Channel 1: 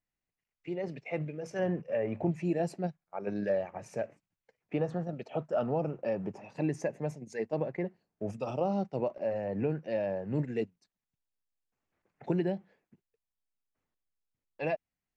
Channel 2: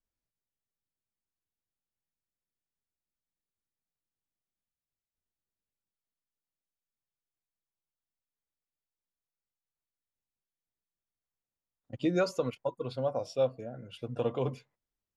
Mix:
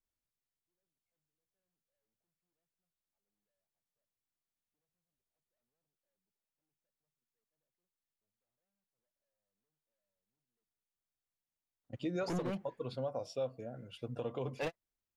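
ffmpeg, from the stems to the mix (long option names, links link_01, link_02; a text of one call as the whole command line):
ffmpeg -i stem1.wav -i stem2.wav -filter_complex "[0:a]asoftclip=type=hard:threshold=-34.5dB,volume=2dB[link_01];[1:a]volume=-3.5dB,asplit=2[link_02][link_03];[link_03]apad=whole_len=668773[link_04];[link_01][link_04]sidechaingate=range=-59dB:threshold=-56dB:ratio=16:detection=peak[link_05];[link_05][link_02]amix=inputs=2:normalize=0,alimiter=level_in=4dB:limit=-24dB:level=0:latency=1:release=140,volume=-4dB" out.wav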